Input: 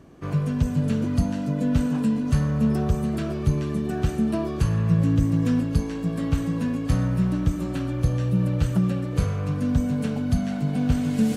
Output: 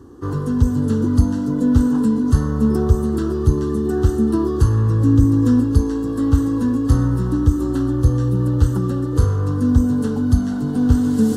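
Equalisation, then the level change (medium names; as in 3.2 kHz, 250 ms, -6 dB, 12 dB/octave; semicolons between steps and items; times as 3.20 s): high-pass 63 Hz; bass shelf 390 Hz +9 dB; static phaser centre 630 Hz, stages 6; +5.5 dB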